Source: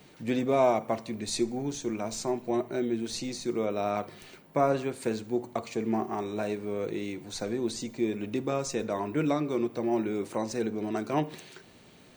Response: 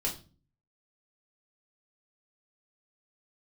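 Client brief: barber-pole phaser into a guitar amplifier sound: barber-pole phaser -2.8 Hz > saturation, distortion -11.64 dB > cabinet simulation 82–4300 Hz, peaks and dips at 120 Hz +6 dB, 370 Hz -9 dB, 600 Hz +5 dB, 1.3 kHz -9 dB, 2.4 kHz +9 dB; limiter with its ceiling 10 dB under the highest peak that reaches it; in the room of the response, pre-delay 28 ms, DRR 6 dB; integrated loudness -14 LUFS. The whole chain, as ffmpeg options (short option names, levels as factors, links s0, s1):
-filter_complex "[0:a]alimiter=limit=0.0794:level=0:latency=1,asplit=2[s0][s1];[1:a]atrim=start_sample=2205,adelay=28[s2];[s1][s2]afir=irnorm=-1:irlink=0,volume=0.299[s3];[s0][s3]amix=inputs=2:normalize=0,asplit=2[s4][s5];[s5]afreqshift=-2.8[s6];[s4][s6]amix=inputs=2:normalize=1,asoftclip=threshold=0.0266,highpass=82,equalizer=f=120:t=q:w=4:g=6,equalizer=f=370:t=q:w=4:g=-9,equalizer=f=600:t=q:w=4:g=5,equalizer=f=1300:t=q:w=4:g=-9,equalizer=f=2400:t=q:w=4:g=9,lowpass=f=4300:w=0.5412,lowpass=f=4300:w=1.3066,volume=16.8"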